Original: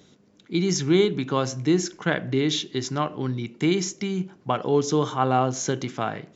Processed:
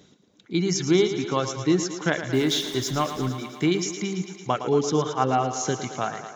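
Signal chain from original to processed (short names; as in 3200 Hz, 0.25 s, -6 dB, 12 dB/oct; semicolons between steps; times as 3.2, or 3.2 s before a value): 2.33–3.29 zero-crossing step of -31 dBFS; reverb removal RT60 1.1 s; thinning echo 0.112 s, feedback 75%, high-pass 190 Hz, level -10 dB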